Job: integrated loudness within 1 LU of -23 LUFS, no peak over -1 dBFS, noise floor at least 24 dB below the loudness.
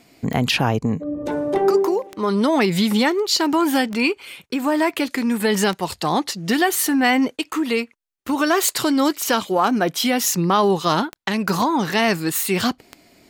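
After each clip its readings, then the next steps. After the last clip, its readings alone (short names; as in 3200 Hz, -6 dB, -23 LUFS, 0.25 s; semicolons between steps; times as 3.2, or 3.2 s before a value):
clicks 8; loudness -20.0 LUFS; peak -4.0 dBFS; loudness target -23.0 LUFS
-> de-click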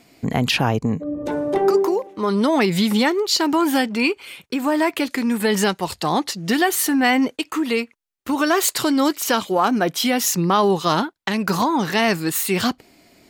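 clicks 0; loudness -20.0 LUFS; peak -4.0 dBFS; loudness target -23.0 LUFS
-> gain -3 dB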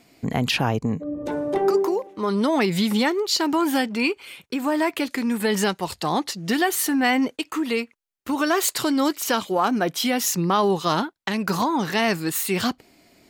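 loudness -23.0 LUFS; peak -7.0 dBFS; noise floor -63 dBFS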